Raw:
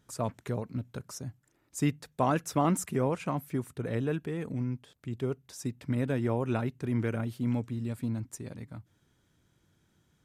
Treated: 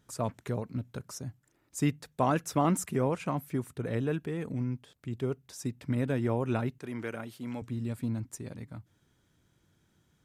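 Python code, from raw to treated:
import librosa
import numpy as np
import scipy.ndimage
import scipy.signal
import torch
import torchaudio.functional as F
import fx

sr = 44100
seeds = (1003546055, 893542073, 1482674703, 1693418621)

y = fx.highpass(x, sr, hz=520.0, slope=6, at=(6.78, 7.62))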